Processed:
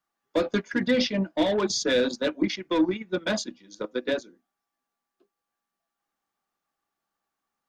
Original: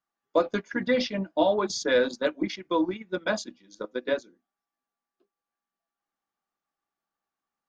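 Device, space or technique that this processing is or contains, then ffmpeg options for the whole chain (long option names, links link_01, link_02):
one-band saturation: -filter_complex "[0:a]acrossover=split=400|2300[link_01][link_02][link_03];[link_02]asoftclip=type=tanh:threshold=-32dB[link_04];[link_01][link_04][link_03]amix=inputs=3:normalize=0,volume=4.5dB"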